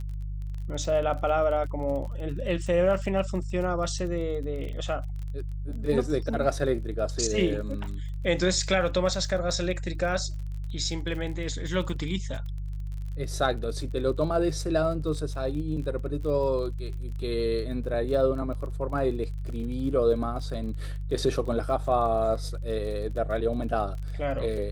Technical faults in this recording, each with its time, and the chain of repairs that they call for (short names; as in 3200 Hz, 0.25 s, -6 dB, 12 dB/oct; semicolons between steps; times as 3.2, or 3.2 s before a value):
crackle 31/s -36 dBFS
hum 50 Hz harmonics 3 -33 dBFS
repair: de-click; de-hum 50 Hz, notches 3